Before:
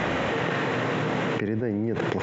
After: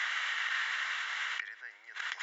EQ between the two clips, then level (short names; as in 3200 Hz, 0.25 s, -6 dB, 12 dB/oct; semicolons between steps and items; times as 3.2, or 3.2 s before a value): HPF 1500 Hz 24 dB/oct; notch 2500 Hz, Q 8.2; 0.0 dB